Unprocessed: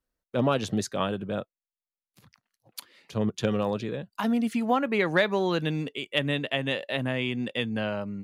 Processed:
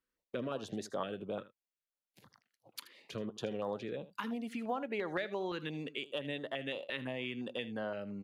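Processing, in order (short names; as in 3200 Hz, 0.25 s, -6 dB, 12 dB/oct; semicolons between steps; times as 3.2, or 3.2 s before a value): low shelf 61 Hz -7 dB; compressor 3:1, threshold -36 dBFS, peak gain reduction 14 dB; tone controls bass -9 dB, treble -8 dB; echo 79 ms -16 dB; stepped notch 5.8 Hz 690–2500 Hz; gain +1.5 dB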